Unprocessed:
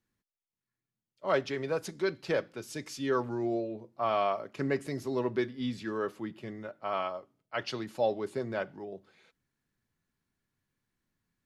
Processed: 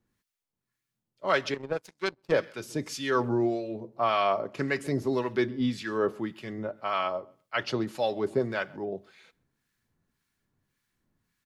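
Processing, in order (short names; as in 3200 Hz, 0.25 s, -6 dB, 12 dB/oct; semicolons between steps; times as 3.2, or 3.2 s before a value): feedback echo 0.132 s, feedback 18%, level -24 dB; 1.54–2.32 power-law curve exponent 2; harmonic tremolo 1.8 Hz, depth 70%, crossover 1100 Hz; gain +8.5 dB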